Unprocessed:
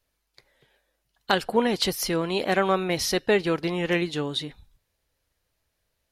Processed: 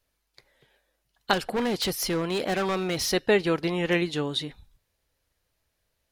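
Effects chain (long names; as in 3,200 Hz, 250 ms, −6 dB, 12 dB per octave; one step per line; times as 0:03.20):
0:01.33–0:03.11: hard clipping −23 dBFS, distortion −10 dB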